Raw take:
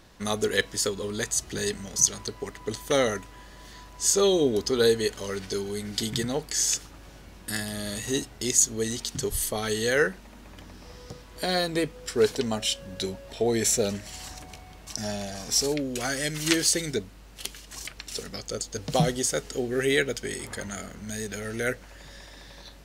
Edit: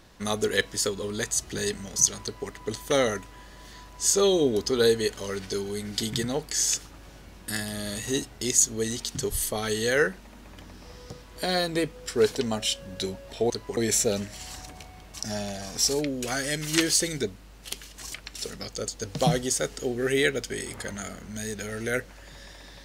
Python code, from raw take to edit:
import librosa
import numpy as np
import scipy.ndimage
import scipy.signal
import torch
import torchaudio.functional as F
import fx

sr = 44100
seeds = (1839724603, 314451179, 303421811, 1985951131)

y = fx.edit(x, sr, fx.duplicate(start_s=2.23, length_s=0.27, to_s=13.5), tone=tone)